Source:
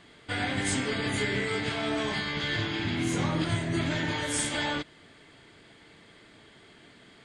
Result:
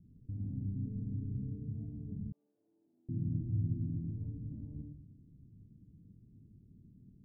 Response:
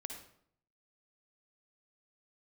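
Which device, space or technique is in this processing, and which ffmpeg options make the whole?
club heard from the street: -filter_complex "[0:a]alimiter=level_in=2.5dB:limit=-24dB:level=0:latency=1:release=47,volume=-2.5dB,lowpass=frequency=190:width=0.5412,lowpass=frequency=190:width=1.3066[link_01];[1:a]atrim=start_sample=2205[link_02];[link_01][link_02]afir=irnorm=-1:irlink=0,asettb=1/sr,asplit=3[link_03][link_04][link_05];[link_03]atrim=end=2.324[link_06];[link_04]atrim=start=2.32:end=3.09,asetpts=PTS-STARTPTS,afade=type=in:duration=0.004:curve=qsin,afade=type=out:start_time=0.766:duration=0.004:curve=qsin,highpass=frequency=650:width=0.5412,highpass=frequency=650:width=1.3066[link_07];[link_05]atrim=start=3.086[link_08];[link_06][link_07]acrossfade=duration=0.004:curve1=hsin:curve2=qsin[link_09];[link_09][link_08]acrossfade=duration=0.004:curve1=qsin:curve2=hsin,volume=7.5dB"

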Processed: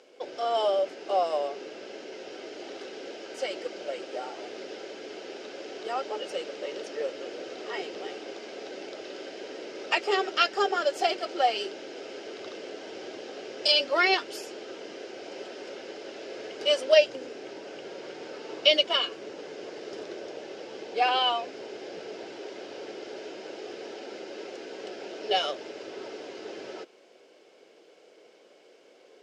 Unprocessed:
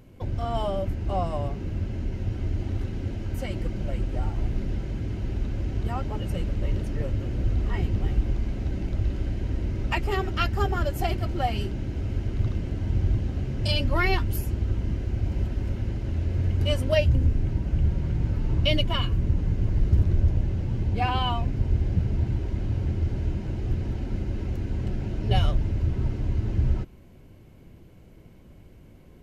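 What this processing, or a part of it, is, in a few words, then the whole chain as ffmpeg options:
phone speaker on a table: -af "highpass=frequency=440:width=0.5412,highpass=frequency=440:width=1.3066,equalizer=frequency=450:width_type=q:width=4:gain=6,equalizer=frequency=1000:width_type=q:width=4:gain=-7,equalizer=frequency=2000:width_type=q:width=4:gain=-3,equalizer=frequency=3400:width_type=q:width=4:gain=3,equalizer=frequency=5100:width_type=q:width=4:gain=7,lowpass=frequency=7800:width=0.5412,lowpass=frequency=7800:width=1.3066,volume=4.5dB"

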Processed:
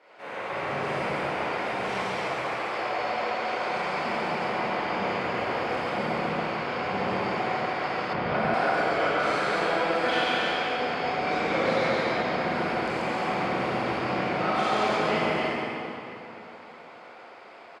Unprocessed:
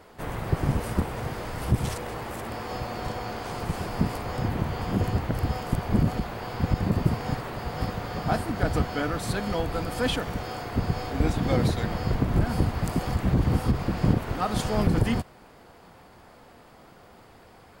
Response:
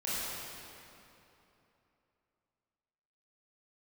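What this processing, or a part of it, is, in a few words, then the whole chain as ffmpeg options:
station announcement: -filter_complex "[0:a]highpass=450,lowpass=4200,equalizer=frequency=2300:width_type=o:width=0.38:gain=7,aecho=1:1:137|274.1:0.708|0.708[link_01];[1:a]atrim=start_sample=2205[link_02];[link_01][link_02]afir=irnorm=-1:irlink=0,asettb=1/sr,asplit=3[link_03][link_04][link_05];[link_03]atrim=end=8.134[link_06];[link_04]atrim=start=8.13:end=8.54,asetpts=PTS-STARTPTS,afade=type=in:duration=0.004:curve=qsin,afade=type=out:start_time=0.406:duration=0.004:curve=qsin,bass=frequency=250:gain=12,treble=frequency=4000:gain=-9[link_07];[link_05]atrim=start=8.536[link_08];[link_06][link_07]acrossfade=duration=0.004:curve1=hsin:curve2=qsin[link_09];[link_09][link_08]acrossfade=duration=0.004:curve1=qsin:curve2=hsin,volume=-3dB"

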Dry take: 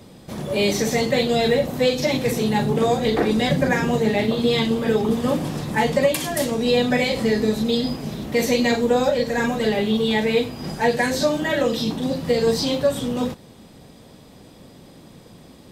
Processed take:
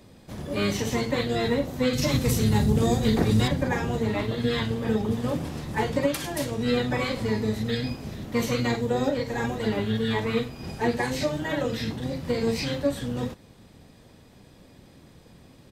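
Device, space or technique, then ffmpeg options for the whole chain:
octave pedal: -filter_complex "[0:a]asplit=2[link_01][link_02];[link_02]asetrate=22050,aresample=44100,atempo=2,volume=-2dB[link_03];[link_01][link_03]amix=inputs=2:normalize=0,asettb=1/sr,asplit=3[link_04][link_05][link_06];[link_04]atrim=end=1.934[link_07];[link_05]atrim=start=1.93:end=3.48,asetpts=PTS-STARTPTS,afade=type=in:duration=0.004:curve=qsin,afade=type=out:start_time=1.546:duration=0.004:curve=qsin,bass=frequency=250:gain=8,treble=frequency=4000:gain=10[link_08];[link_06]atrim=start=3.476[link_09];[link_07][link_08]acrossfade=duration=0.004:curve1=hsin:curve2=qsin[link_10];[link_10][link_09]acrossfade=duration=0.004:curve1=qsin:curve2=hsin,volume=-8dB"

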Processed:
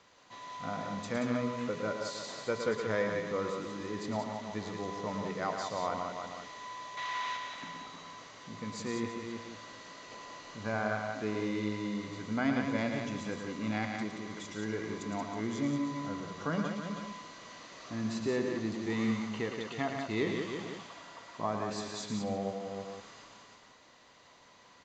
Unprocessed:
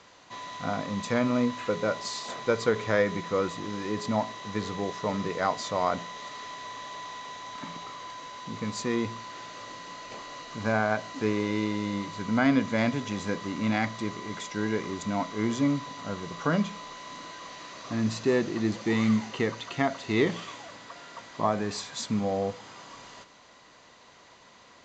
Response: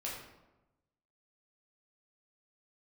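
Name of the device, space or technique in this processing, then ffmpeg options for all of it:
ducked delay: -filter_complex "[0:a]asettb=1/sr,asplit=3[link_01][link_02][link_03];[link_01]atrim=end=6.974[link_04];[link_02]atrim=start=6.97:end=7.37,asetpts=PTS-STARTPTS,afade=type=in:duration=0.004:curve=qsin,afade=type=out:start_time=0.396:duration=0.004:curve=qsin,equalizer=frequency=2100:width=0.46:gain=14.5[link_05];[link_03]atrim=start=7.366[link_06];[link_04][link_05]acrossfade=duration=0.004:curve1=hsin:curve2=qsin[link_07];[link_07][link_06]acrossfade=duration=0.004:curve1=qsin:curve2=hsin,asplit=3[link_08][link_09][link_10];[link_09]adelay=318,volume=-3.5dB[link_11];[link_10]apad=whole_len=1109830[link_12];[link_11][link_12]sidechaincompress=threshold=-38dB:ratio=8:attack=5.6:release=259[link_13];[link_08][link_13]amix=inputs=2:normalize=0,aecho=1:1:112|179:0.447|0.531,volume=-8dB"

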